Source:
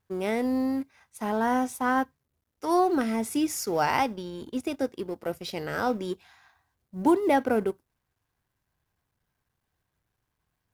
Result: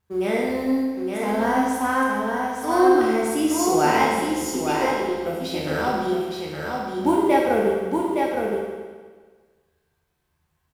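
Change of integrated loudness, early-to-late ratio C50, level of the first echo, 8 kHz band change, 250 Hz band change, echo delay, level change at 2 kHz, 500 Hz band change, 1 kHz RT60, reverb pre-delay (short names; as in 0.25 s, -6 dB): +5.5 dB, -2.0 dB, -4.5 dB, +7.5 dB, +5.5 dB, 0.866 s, +7.0 dB, +7.5 dB, 1.5 s, 13 ms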